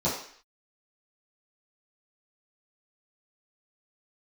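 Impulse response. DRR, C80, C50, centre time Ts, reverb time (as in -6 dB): -11.0 dB, 8.5 dB, 5.0 dB, 40 ms, 0.55 s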